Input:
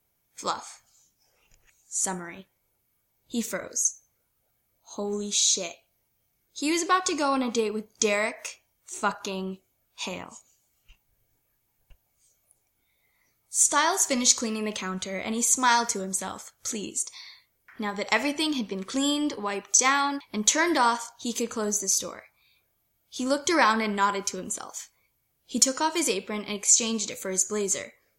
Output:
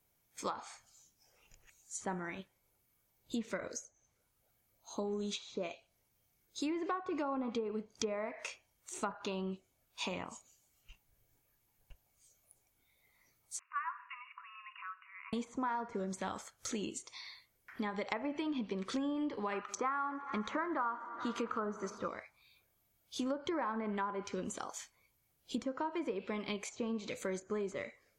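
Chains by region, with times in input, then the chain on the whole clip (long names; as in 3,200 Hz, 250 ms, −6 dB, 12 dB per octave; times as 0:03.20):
0:13.59–0:15.33: one scale factor per block 7 bits + linear-phase brick-wall band-pass 970–2,900 Hz + parametric band 2,100 Hz −12.5 dB 1.6 octaves
0:19.52–0:22.08: parametric band 1,300 Hz +14.5 dB 0.67 octaves + notch filter 3,500 Hz, Q 29 + echo machine with several playback heads 83 ms, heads second and third, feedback 63%, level −23.5 dB
whole clip: treble cut that deepens with the level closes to 1,200 Hz, closed at −21 dBFS; dynamic equaliser 6,400 Hz, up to −6 dB, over −50 dBFS, Q 0.9; downward compressor 6 to 1, threshold −32 dBFS; level −2 dB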